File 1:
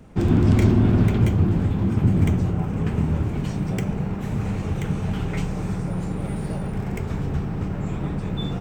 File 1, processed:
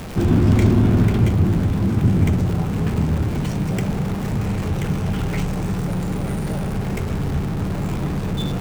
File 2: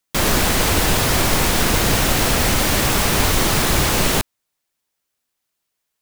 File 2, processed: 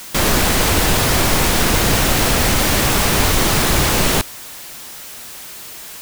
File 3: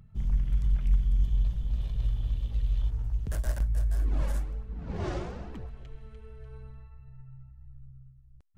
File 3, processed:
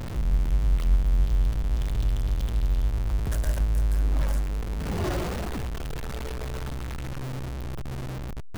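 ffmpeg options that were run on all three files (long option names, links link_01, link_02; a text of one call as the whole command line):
ffmpeg -i in.wav -af "aeval=exprs='val(0)+0.5*0.0376*sgn(val(0))':channel_layout=same,volume=1dB" out.wav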